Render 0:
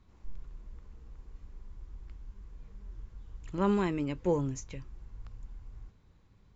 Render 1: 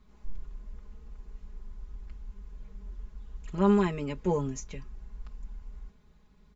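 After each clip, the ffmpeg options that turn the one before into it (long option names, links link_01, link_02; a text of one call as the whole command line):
ffmpeg -i in.wav -af "aecho=1:1:4.8:0.85" out.wav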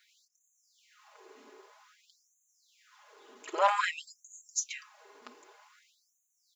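ffmpeg -i in.wav -af "lowshelf=frequency=110:gain=10,aeval=exprs='0.316*(cos(1*acos(clip(val(0)/0.316,-1,1)))-cos(1*PI/2))+0.0398*(cos(5*acos(clip(val(0)/0.316,-1,1)))-cos(5*PI/2))':channel_layout=same,afftfilt=real='re*gte(b*sr/1024,250*pow(6200/250,0.5+0.5*sin(2*PI*0.52*pts/sr)))':imag='im*gte(b*sr/1024,250*pow(6200/250,0.5+0.5*sin(2*PI*0.52*pts/sr)))':win_size=1024:overlap=0.75,volume=6.5dB" out.wav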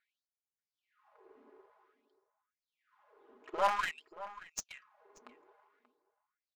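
ffmpeg -i in.wav -filter_complex "[0:a]adynamicsmooth=sensitivity=5:basefreq=1200,aeval=exprs='0.237*(cos(1*acos(clip(val(0)/0.237,-1,1)))-cos(1*PI/2))+0.0075*(cos(8*acos(clip(val(0)/0.237,-1,1)))-cos(8*PI/2))':channel_layout=same,asplit=2[link_01][link_02];[link_02]adelay=583.1,volume=-15dB,highshelf=frequency=4000:gain=-13.1[link_03];[link_01][link_03]amix=inputs=2:normalize=0,volume=-4dB" out.wav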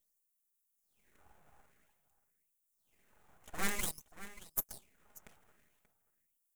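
ffmpeg -i in.wav -af "aeval=exprs='abs(val(0))':channel_layout=same,aexciter=amount=7:drive=4.6:freq=6500,asoftclip=type=tanh:threshold=-18.5dB,volume=-2dB" out.wav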